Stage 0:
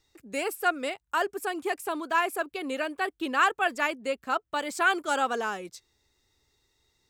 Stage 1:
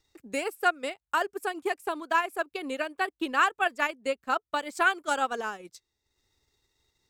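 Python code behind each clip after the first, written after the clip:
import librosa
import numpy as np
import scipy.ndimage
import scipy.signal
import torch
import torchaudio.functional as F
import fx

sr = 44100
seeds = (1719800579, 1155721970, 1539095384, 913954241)

y = fx.transient(x, sr, attack_db=5, sustain_db=-8)
y = y * librosa.db_to_amplitude(-2.5)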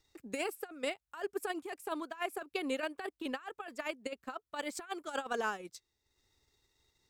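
y = fx.over_compress(x, sr, threshold_db=-31.0, ratio=-0.5)
y = y * librosa.db_to_amplitude(-5.5)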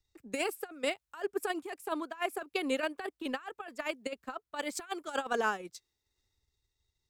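y = fx.band_widen(x, sr, depth_pct=40)
y = y * librosa.db_to_amplitude(3.0)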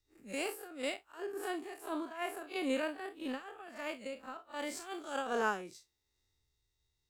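y = fx.spec_blur(x, sr, span_ms=87.0)
y = y * librosa.db_to_amplitude(1.0)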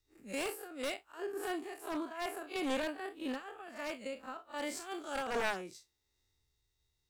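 y = np.minimum(x, 2.0 * 10.0 ** (-31.0 / 20.0) - x)
y = y * librosa.db_to_amplitude(1.0)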